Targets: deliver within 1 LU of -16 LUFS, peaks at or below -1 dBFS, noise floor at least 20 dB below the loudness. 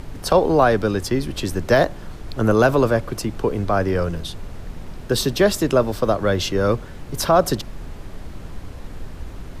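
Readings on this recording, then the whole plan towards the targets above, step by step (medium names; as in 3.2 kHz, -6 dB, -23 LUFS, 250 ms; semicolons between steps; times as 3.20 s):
noise floor -36 dBFS; noise floor target -40 dBFS; loudness -20.0 LUFS; peak level -3.5 dBFS; loudness target -16.0 LUFS
-> noise print and reduce 6 dB; trim +4 dB; peak limiter -1 dBFS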